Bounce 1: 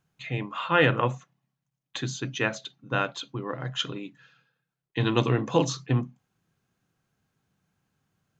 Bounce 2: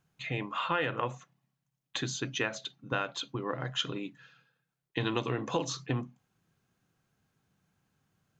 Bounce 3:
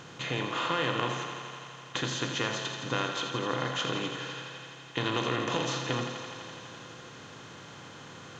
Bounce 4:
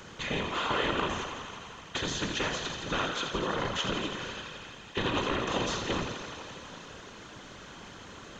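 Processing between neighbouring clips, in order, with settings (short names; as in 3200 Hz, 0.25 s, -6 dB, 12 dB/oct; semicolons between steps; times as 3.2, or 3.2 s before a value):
dynamic EQ 150 Hz, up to -6 dB, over -37 dBFS, Q 0.79; compressor 6:1, threshold -27 dBFS, peak gain reduction 10.5 dB
per-bin compression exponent 0.4; thinning echo 84 ms, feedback 84%, high-pass 180 Hz, level -8.5 dB; gain -4.5 dB
whisperiser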